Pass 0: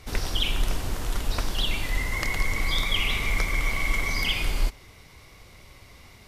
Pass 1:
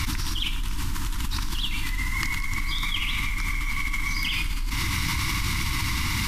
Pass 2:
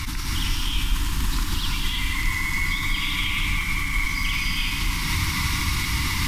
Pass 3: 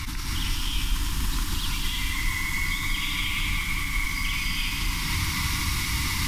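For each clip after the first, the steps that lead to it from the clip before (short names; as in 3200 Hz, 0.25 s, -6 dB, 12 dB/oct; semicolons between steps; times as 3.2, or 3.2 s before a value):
elliptic band-stop 320–930 Hz, stop band 40 dB; fast leveller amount 100%; gain -7.5 dB
limiter -19.5 dBFS, peak gain reduction 10 dB; non-linear reverb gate 0.36 s rising, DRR -3 dB; lo-fi delay 0.173 s, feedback 55%, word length 8-bit, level -8.5 dB
thin delay 0.214 s, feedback 82%, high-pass 5100 Hz, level -4 dB; gain -3 dB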